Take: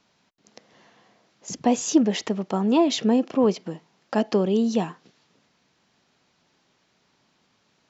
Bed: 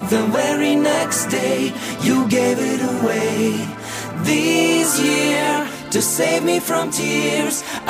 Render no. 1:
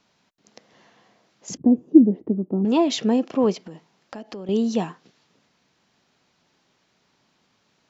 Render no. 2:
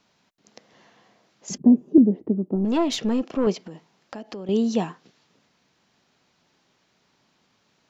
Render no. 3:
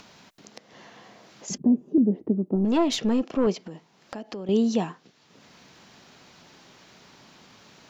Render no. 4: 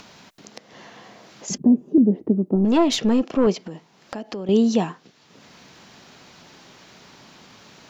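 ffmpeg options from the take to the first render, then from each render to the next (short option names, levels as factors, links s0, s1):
-filter_complex "[0:a]asettb=1/sr,asplit=3[s0][s1][s2];[s0]atrim=end=1.574[s3];[s1]atrim=start=1.57:end=2.65,asetpts=PTS-STARTPTS,afade=t=in:d=0.004:c=qsin,afade=t=out:st=1.076:d=0.004:c=qsin,lowpass=f=310:t=q:w=2.3[s4];[s2]atrim=start=2.646[s5];[s3][s4]acrossfade=d=0.004:c1=hsin:c2=qsin[s6];[s6][s5]acrossfade=d=0.004:c1=qsin:c2=hsin,asettb=1/sr,asplit=3[s7][s8][s9];[s7]atrim=end=3.614[s10];[s8]atrim=start=3.61:end=4.49,asetpts=PTS-STARTPTS,afade=t=in:d=0.004:c=qsin,afade=t=out:st=0.876:d=0.004:c=qsin,acompressor=threshold=0.0178:ratio=4:attack=3.2:release=140:knee=1:detection=peak[s11];[s9]atrim=start=4.486[s12];[s10][s11]acrossfade=d=0.004:c1=hsin:c2=qsin[s13];[s13][s12]acrossfade=d=0.004:c1=qsin:c2=hsin"
-filter_complex "[0:a]asettb=1/sr,asplit=3[s0][s1][s2];[s0]atrim=end=1.504[s3];[s1]atrim=start=1.5:end=1.98,asetpts=PTS-STARTPTS,afade=t=in:d=0.004:c=qsin,afade=t=out:st=0.476:d=0.004:c=qsin,aecho=1:1:5:0.65,atrim=end_sample=21168[s4];[s2]atrim=start=1.976[s5];[s3][s4]acrossfade=d=0.004:c1=hsin:c2=qsin[s6];[s6][s5]acrossfade=d=0.004:c1=qsin:c2=hsin,asettb=1/sr,asplit=3[s7][s8][s9];[s7]atrim=end=2.554[s10];[s8]atrim=start=2.55:end=3.47,asetpts=PTS-STARTPTS,afade=t=in:d=0.004:c=qsin,afade=t=out:st=0.916:d=0.004:c=qsin,aeval=exprs='(tanh(5.01*val(0)+0.35)-tanh(0.35))/5.01':c=same[s11];[s9]atrim=start=3.466[s12];[s10][s11]acrossfade=d=0.004:c1=hsin:c2=qsin[s13];[s13][s12]acrossfade=d=0.004:c1=qsin:c2=hsin"
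-af "acompressor=mode=upward:threshold=0.0112:ratio=2.5,alimiter=limit=0.237:level=0:latency=1:release=172"
-af "volume=1.68"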